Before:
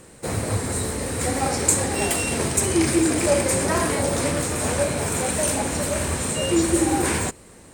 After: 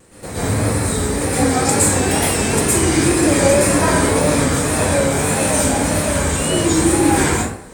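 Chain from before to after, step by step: plate-style reverb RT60 0.67 s, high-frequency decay 0.6×, pre-delay 105 ms, DRR -9.5 dB; wow and flutter 81 cents; trim -3 dB

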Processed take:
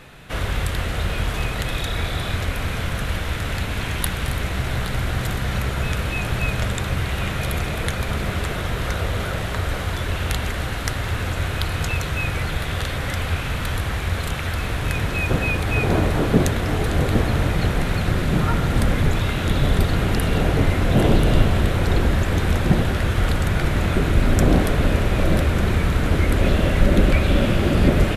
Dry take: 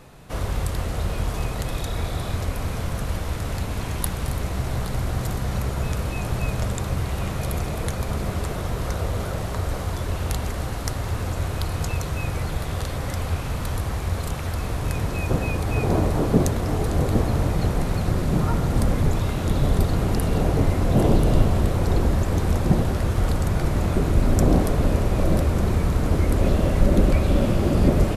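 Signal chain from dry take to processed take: high-order bell 2.3 kHz +8 dB; trim +1.5 dB

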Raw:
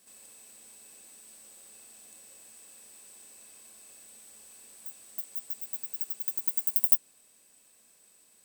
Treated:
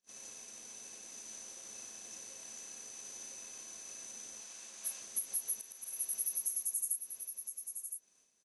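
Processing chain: knee-point frequency compression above 3.4 kHz 1.5:1; expander -49 dBFS; 4.40–5.02 s: frequency weighting A; compression 16:1, threshold -40 dBFS, peak gain reduction 22.5 dB; 5.54–6.01 s: slow attack 231 ms; delay 1014 ms -7.5 dB; trim +7.5 dB

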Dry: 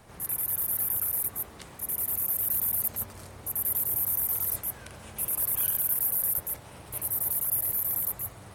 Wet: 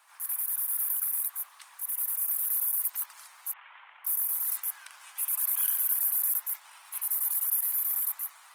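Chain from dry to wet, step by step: 3.53–4.05 s: CVSD coder 16 kbps; steep high-pass 920 Hz 36 dB/octave; Opus 20 kbps 48 kHz

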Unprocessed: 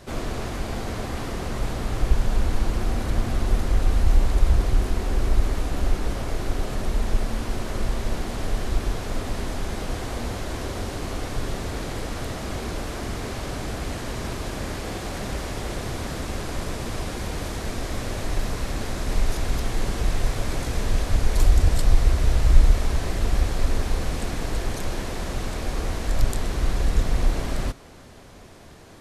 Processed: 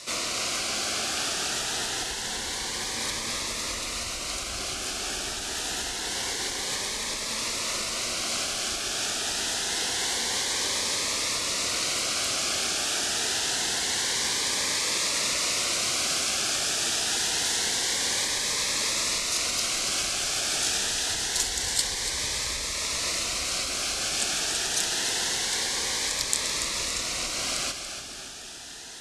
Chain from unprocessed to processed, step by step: compression 1.5:1, threshold -25 dBFS, peak gain reduction 7 dB; frequency weighting ITU-R 468; on a send: two-band feedback delay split 370 Hz, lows 593 ms, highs 285 ms, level -8.5 dB; on the sum: Shepard-style phaser rising 0.26 Hz; trim +3.5 dB

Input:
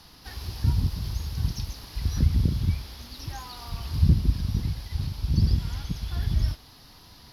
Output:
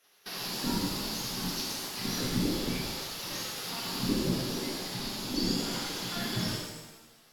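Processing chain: spectral gate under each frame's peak -15 dB weak; gate -52 dBFS, range -14 dB; pitch-shifted reverb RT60 1.1 s, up +7 st, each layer -8 dB, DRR -2.5 dB; trim +3.5 dB

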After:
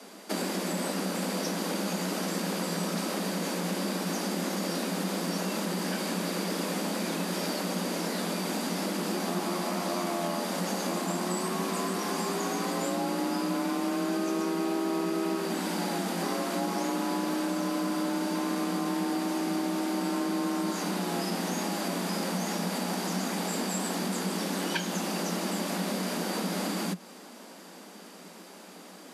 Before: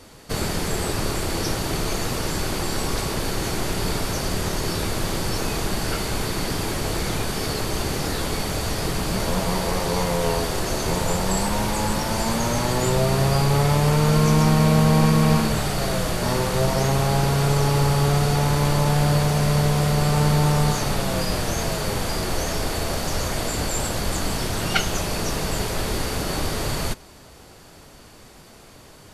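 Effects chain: compression 4:1, threshold -27 dBFS, peak gain reduction 12.5 dB; frequency shift +170 Hz; trim -1.5 dB

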